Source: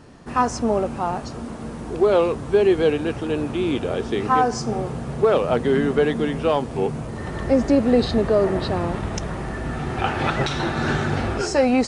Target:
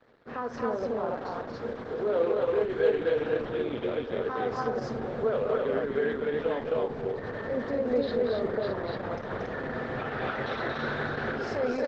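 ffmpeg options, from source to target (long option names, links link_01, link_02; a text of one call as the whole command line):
ffmpeg -i in.wav -filter_complex "[0:a]bandreject=frequency=426.7:width_type=h:width=4,bandreject=frequency=853.4:width_type=h:width=4,bandreject=frequency=1280.1:width_type=h:width=4,bandreject=frequency=1706.8:width_type=h:width=4,bandreject=frequency=2133.5:width_type=h:width=4,bandreject=frequency=2560.2:width_type=h:width=4,bandreject=frequency=2986.9:width_type=h:width=4,bandreject=frequency=3413.6:width_type=h:width=4,bandreject=frequency=3840.3:width_type=h:width=4,bandreject=frequency=4267:width_type=h:width=4,bandreject=frequency=4693.7:width_type=h:width=4,bandreject=frequency=5120.4:width_type=h:width=4,bandreject=frequency=5547.1:width_type=h:width=4,bandreject=frequency=5973.8:width_type=h:width=4,bandreject=frequency=6400.5:width_type=h:width=4,bandreject=frequency=6827.2:width_type=h:width=4,bandreject=frequency=7253.9:width_type=h:width=4,bandreject=frequency=7680.6:width_type=h:width=4,bandreject=frequency=8107.3:width_type=h:width=4,bandreject=frequency=8534:width_type=h:width=4,bandreject=frequency=8960.7:width_type=h:width=4,adynamicequalizer=threshold=0.0178:dfrequency=480:dqfactor=6.4:tfrequency=480:tqfactor=6.4:attack=5:release=100:ratio=0.375:range=2:mode=cutabove:tftype=bell,alimiter=limit=-18dB:level=0:latency=1:release=156,aeval=exprs='sgn(val(0))*max(abs(val(0))-0.00447,0)':channel_layout=same,highpass=140,equalizer=frequency=170:width_type=q:width=4:gain=-9,equalizer=frequency=330:width_type=q:width=4:gain=-9,equalizer=frequency=480:width_type=q:width=4:gain=9,equalizer=frequency=860:width_type=q:width=4:gain=-4,equalizer=frequency=1600:width_type=q:width=4:gain=4,equalizer=frequency=2700:width_type=q:width=4:gain=-8,lowpass=frequency=3900:width=0.5412,lowpass=frequency=3900:width=1.3066,asettb=1/sr,asplit=3[link_01][link_02][link_03];[link_01]atrim=end=1.074[link_04];[link_02]atrim=start=1.07:end=3.34,asetpts=PTS-STARTPTS,afade=type=in:duration=0.004:curve=qsin,afade=type=out:start_time=2.266:duration=0.004:curve=qsin,asplit=2[link_05][link_06];[link_06]adelay=24,volume=-7dB[link_07];[link_05][link_07]amix=inputs=2:normalize=0,atrim=end_sample=100107[link_08];[link_03]atrim=start=3.336[link_09];[link_04][link_08]acrossfade=duration=0.004:curve1=hsin:curve2=qsin[link_10];[link_10][link_09]acrossfade=duration=0.004:curve1=qsin:curve2=hsin,aecho=1:1:52.48|230.3|277:0.282|0.501|0.891,volume=-4.5dB" -ar 48000 -c:a libopus -b:a 10k out.opus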